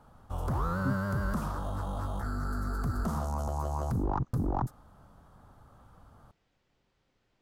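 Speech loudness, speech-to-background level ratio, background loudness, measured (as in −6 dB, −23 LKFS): −38.5 LKFS, −5.0 dB, −33.5 LKFS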